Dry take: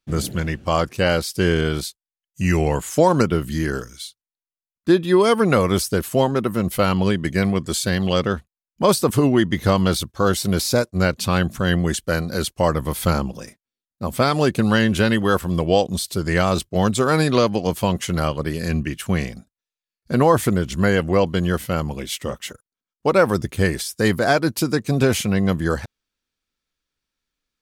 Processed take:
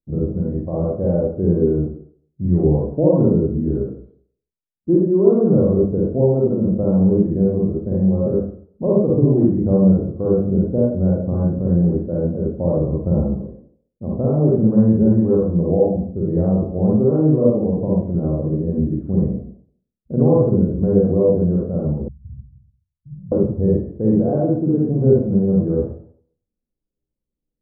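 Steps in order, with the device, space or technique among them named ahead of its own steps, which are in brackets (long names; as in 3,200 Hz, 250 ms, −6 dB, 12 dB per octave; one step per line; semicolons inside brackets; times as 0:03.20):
next room (low-pass filter 550 Hz 24 dB per octave; convolution reverb RT60 0.55 s, pre-delay 41 ms, DRR −5 dB)
0:22.08–0:23.32: inverse Chebyshev band-stop filter 380–7,700 Hz, stop band 60 dB
level −2.5 dB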